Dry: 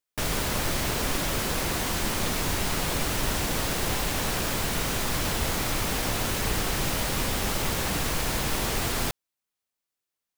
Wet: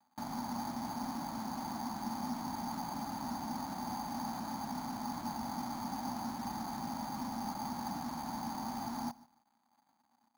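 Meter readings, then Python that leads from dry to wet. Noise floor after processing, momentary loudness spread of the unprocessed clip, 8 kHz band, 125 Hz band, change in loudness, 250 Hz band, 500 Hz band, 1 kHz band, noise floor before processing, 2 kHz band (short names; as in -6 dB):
-76 dBFS, 0 LU, -19.5 dB, -17.0 dB, -13.0 dB, -5.5 dB, -18.5 dB, -5.0 dB, under -85 dBFS, -21.5 dB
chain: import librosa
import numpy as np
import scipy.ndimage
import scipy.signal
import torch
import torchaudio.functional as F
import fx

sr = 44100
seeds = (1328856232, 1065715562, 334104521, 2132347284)

p1 = fx.dmg_crackle(x, sr, seeds[0], per_s=400.0, level_db=-42.0)
p2 = fx.double_bandpass(p1, sr, hz=450.0, octaves=1.8)
p3 = p2 + fx.echo_feedback(p2, sr, ms=147, feedback_pct=18, wet_db=-21.5, dry=0)
p4 = np.repeat(scipy.signal.resample_poly(p3, 1, 8), 8)[:len(p3)]
y = p4 * librosa.db_to_amplitude(1.0)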